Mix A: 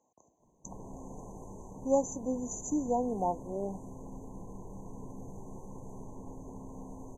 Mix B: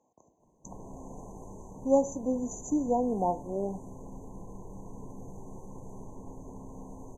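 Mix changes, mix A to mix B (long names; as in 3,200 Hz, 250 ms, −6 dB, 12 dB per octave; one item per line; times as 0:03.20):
speech: add tilt shelving filter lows +3.5 dB, about 1,200 Hz
reverb: on, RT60 0.60 s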